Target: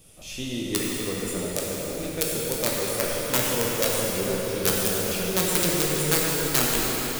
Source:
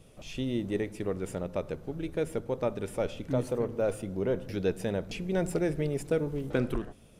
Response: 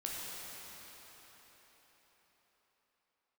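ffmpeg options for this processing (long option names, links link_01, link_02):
-filter_complex "[0:a]aeval=exprs='(mod(9.44*val(0)+1,2)-1)/9.44':channel_layout=same,crystalizer=i=4:c=0[link_01];[1:a]atrim=start_sample=2205[link_02];[link_01][link_02]afir=irnorm=-1:irlink=0,volume=1dB"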